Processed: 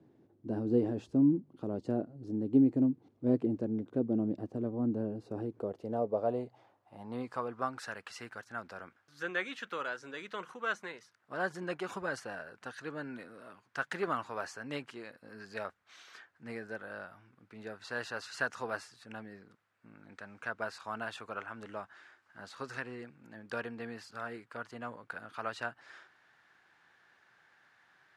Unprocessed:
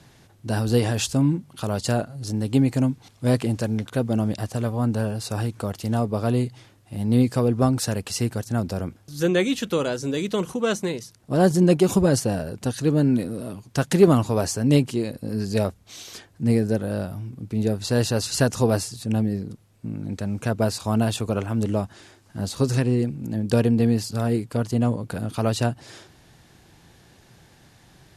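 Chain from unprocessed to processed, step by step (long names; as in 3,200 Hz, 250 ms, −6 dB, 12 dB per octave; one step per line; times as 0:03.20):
band-pass filter sweep 320 Hz → 1,500 Hz, 0:05.20–0:07.80
level −1.5 dB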